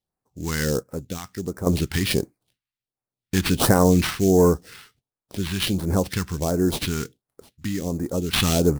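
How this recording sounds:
aliases and images of a low sample rate 6,900 Hz, jitter 20%
phaser sweep stages 2, 1.4 Hz, lowest notch 500–3,100 Hz
sample-and-hold tremolo 1.2 Hz, depth 75%

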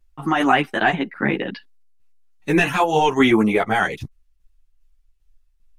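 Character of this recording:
tremolo saw down 2.5 Hz, depth 45%
a shimmering, thickened sound

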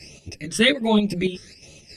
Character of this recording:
phaser sweep stages 12, 1.3 Hz, lowest notch 760–1,700 Hz
chopped level 3.7 Hz, depth 60%, duty 65%
a shimmering, thickened sound

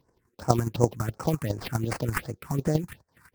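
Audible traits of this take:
chopped level 12 Hz, depth 60%, duty 15%
aliases and images of a low sample rate 6,700 Hz, jitter 20%
phaser sweep stages 4, 2.7 Hz, lowest notch 510–3,500 Hz
Ogg Vorbis

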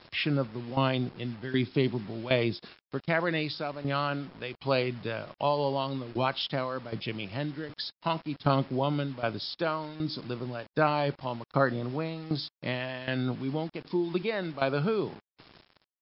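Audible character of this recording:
tremolo saw down 1.3 Hz, depth 80%
a quantiser's noise floor 8 bits, dither none
MP3

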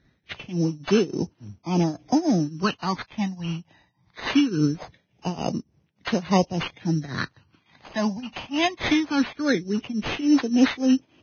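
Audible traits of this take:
tremolo triangle 3.5 Hz, depth 90%
phaser sweep stages 12, 0.21 Hz, lowest notch 410–1,900 Hz
aliases and images of a low sample rate 5,700 Hz, jitter 0%
Ogg Vorbis

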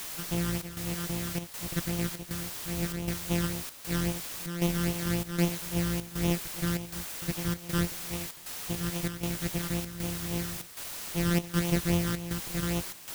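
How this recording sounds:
a buzz of ramps at a fixed pitch in blocks of 256 samples
phaser sweep stages 12, 3.7 Hz, lowest notch 710–1,600 Hz
a quantiser's noise floor 6 bits, dither triangular
chopped level 1.3 Hz, depth 65%, duty 80%

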